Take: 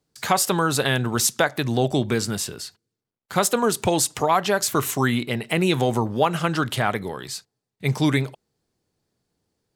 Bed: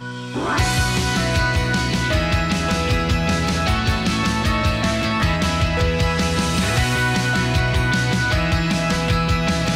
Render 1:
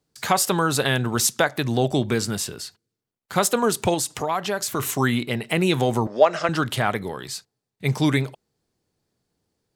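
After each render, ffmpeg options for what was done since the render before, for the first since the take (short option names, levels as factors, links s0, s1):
-filter_complex "[0:a]asettb=1/sr,asplit=3[s0][s1][s2];[s0]atrim=end=3.944[s3];[s1]atrim=start=3.94:end=4.8,asetpts=PTS-STARTPTS,afade=t=in:d=0.004:c=qsin,afade=t=out:st=0.856:d=0.004:c=qsin,acompressor=threshold=0.0398:ratio=1.5:attack=3.2:release=140:knee=1:detection=peak[s4];[s2]atrim=start=4.796[s5];[s3][s4]acrossfade=d=0.004:c1=hsin:c2=qsin[s6];[s6][s5]acrossfade=d=0.004:c1=qsin:c2=hsin,asettb=1/sr,asplit=3[s7][s8][s9];[s7]atrim=end=6.074[s10];[s8]atrim=start=6.07:end=6.49,asetpts=PTS-STARTPTS,afade=t=in:d=0.004:c=qsin,afade=t=out:st=0.416:d=0.004:c=qsin,highpass=350,equalizer=f=620:t=q:w=4:g=10,equalizer=f=880:t=q:w=4:g=-4,equalizer=f=1900:t=q:w=4:g=5,equalizer=f=3100:t=q:w=4:g=-6,equalizer=f=5300:t=q:w=4:g=9,lowpass=f=7200:w=0.5412,lowpass=f=7200:w=1.3066[s11];[s9]atrim=start=6.486[s12];[s10][s11]acrossfade=d=0.004:c1=hsin:c2=qsin[s13];[s13][s12]acrossfade=d=0.004:c1=qsin:c2=hsin"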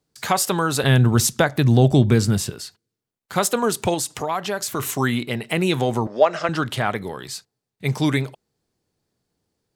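-filter_complex "[0:a]asettb=1/sr,asplit=3[s0][s1][s2];[s0]atrim=end=0.834[s3];[s1]atrim=start=0.83:end=2.5,asetpts=PTS-STARTPTS,afade=t=in:d=0.004:c=qsin,afade=t=out:st=1.666:d=0.004:c=qsin,equalizer=f=70:w=0.32:g=13[s4];[s2]atrim=start=2.496[s5];[s3][s4]acrossfade=d=0.004:c1=hsin:c2=qsin[s6];[s6][s5]acrossfade=d=0.004:c1=qsin:c2=hsin,asettb=1/sr,asplit=3[s7][s8][s9];[s7]atrim=end=5.794[s10];[s8]atrim=start=5.79:end=6.98,asetpts=PTS-STARTPTS,afade=t=in:d=0.004:c=qsin,afade=t=out:st=1.186:d=0.004:c=qsin,highshelf=f=8800:g=-6[s11];[s9]atrim=start=6.976[s12];[s10][s11]acrossfade=d=0.004:c1=hsin:c2=qsin[s13];[s13][s12]acrossfade=d=0.004:c1=qsin:c2=hsin"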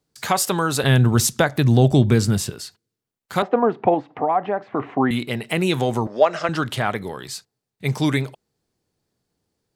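-filter_complex "[0:a]asettb=1/sr,asplit=3[s0][s1][s2];[s0]atrim=end=3.424[s3];[s1]atrim=start=3.42:end=5.11,asetpts=PTS-STARTPTS,afade=t=in:d=0.004:c=qsin,afade=t=out:st=1.686:d=0.004:c=qsin,highpass=160,equalizer=f=280:t=q:w=4:g=8,equalizer=f=500:t=q:w=4:g=3,equalizer=f=750:t=q:w=4:g=10,equalizer=f=1500:t=q:w=4:g=-5,lowpass=f=2000:w=0.5412,lowpass=f=2000:w=1.3066[s4];[s2]atrim=start=5.106[s5];[s3][s4]acrossfade=d=0.004:c1=hsin:c2=qsin[s6];[s6][s5]acrossfade=d=0.004:c1=qsin:c2=hsin"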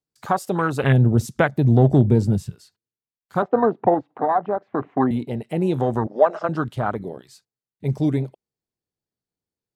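-af "afwtdn=0.0708"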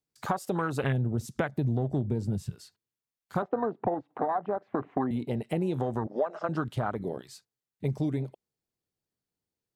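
-af "acompressor=threshold=0.0501:ratio=6"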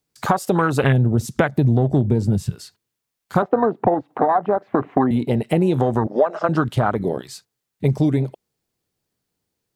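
-af "volume=3.76,alimiter=limit=0.708:level=0:latency=1"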